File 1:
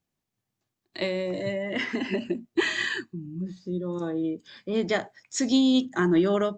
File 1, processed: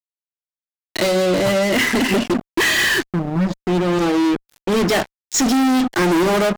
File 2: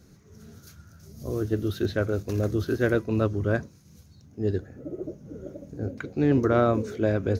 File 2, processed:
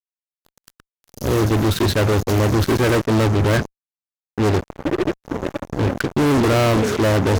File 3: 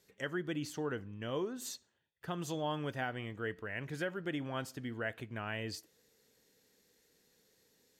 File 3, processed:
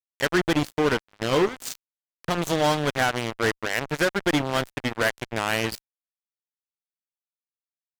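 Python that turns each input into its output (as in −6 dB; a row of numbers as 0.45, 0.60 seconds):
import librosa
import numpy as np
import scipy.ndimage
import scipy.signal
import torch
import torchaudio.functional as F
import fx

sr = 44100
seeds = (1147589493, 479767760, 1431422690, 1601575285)

y = fx.fuzz(x, sr, gain_db=37.0, gate_db=-39.0)
y = y * librosa.db_to_amplitude(-1.0)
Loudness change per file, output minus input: +9.5, +8.0, +15.0 LU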